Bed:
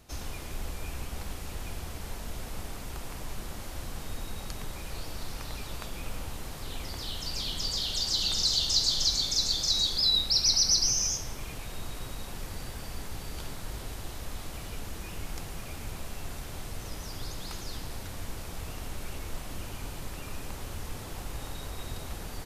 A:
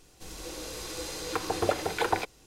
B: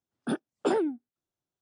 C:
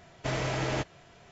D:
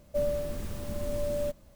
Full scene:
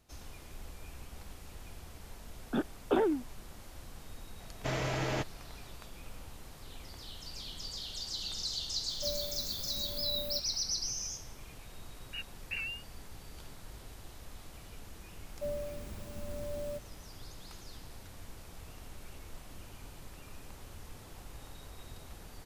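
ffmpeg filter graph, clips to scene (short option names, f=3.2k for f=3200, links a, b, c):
-filter_complex "[2:a]asplit=2[a][b];[4:a]asplit=2[c][d];[0:a]volume=-10.5dB[e];[a]aresample=8000,aresample=44100[f];[c]aexciter=amount=6.9:drive=7.1:freq=11k[g];[b]lowpass=f=2.6k:t=q:w=0.5098,lowpass=f=2.6k:t=q:w=0.6013,lowpass=f=2.6k:t=q:w=0.9,lowpass=f=2.6k:t=q:w=2.563,afreqshift=-3100[h];[f]atrim=end=1.61,asetpts=PTS-STARTPTS,volume=-2dB,afade=t=in:d=0.004:c=hsin,afade=t=out:st=1.606:d=0.004:c=hsin,adelay=2260[i];[3:a]atrim=end=1.31,asetpts=PTS-STARTPTS,volume=-3dB,afade=t=in:d=0.004:c=hsin,afade=t=out:st=1.306:d=0.004:c=hsin,adelay=4400[j];[g]atrim=end=1.75,asetpts=PTS-STARTPTS,volume=-11dB,afade=t=in:d=0.004:c=hsin,afade=t=out:st=1.746:d=0.004:c=hsin,adelay=8880[k];[h]atrim=end=1.61,asetpts=PTS-STARTPTS,volume=-13dB,afade=t=in:d=0.004:c=hsin,afade=t=out:st=1.606:d=0.004:c=hsin,adelay=523026S[l];[d]atrim=end=1.75,asetpts=PTS-STARTPTS,volume=-8.5dB,afade=t=in:d=0.004:c=hsin,afade=t=out:st=1.746:d=0.004:c=hsin,adelay=15270[m];[e][i][j][k][l][m]amix=inputs=6:normalize=0"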